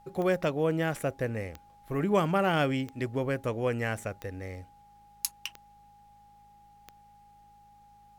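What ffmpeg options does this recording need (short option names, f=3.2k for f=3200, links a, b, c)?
-af "adeclick=t=4,bandreject=f=53.2:t=h:w=4,bandreject=f=106.4:t=h:w=4,bandreject=f=159.6:t=h:w=4,bandreject=f=212.8:t=h:w=4,bandreject=f=820:w=30,agate=range=-21dB:threshold=-49dB"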